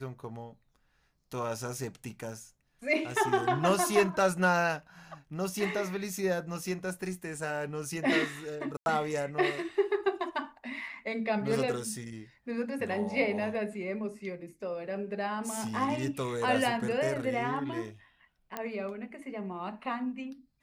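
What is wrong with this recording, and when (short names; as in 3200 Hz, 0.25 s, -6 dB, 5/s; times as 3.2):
8.77–8.86 gap 91 ms
18.57 pop -19 dBFS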